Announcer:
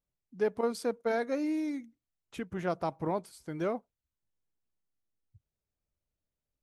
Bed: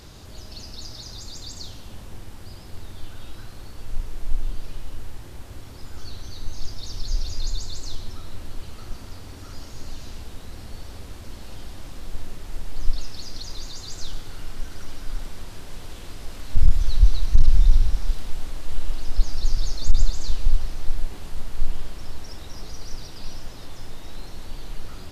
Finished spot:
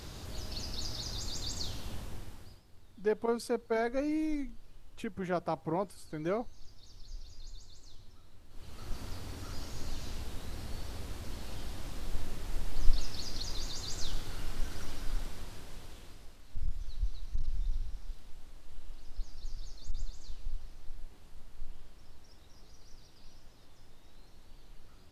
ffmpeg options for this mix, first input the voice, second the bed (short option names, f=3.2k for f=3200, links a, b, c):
-filter_complex "[0:a]adelay=2650,volume=-1dB[a];[1:a]volume=16.5dB,afade=t=out:st=1.89:d=0.73:silence=0.105925,afade=t=in:st=8.49:d=0.53:silence=0.133352,afade=t=out:st=14.83:d=1.55:silence=0.158489[b];[a][b]amix=inputs=2:normalize=0"